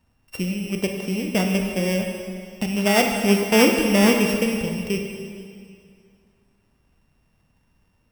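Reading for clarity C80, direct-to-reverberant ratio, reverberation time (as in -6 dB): 5.0 dB, 2.5 dB, 2.3 s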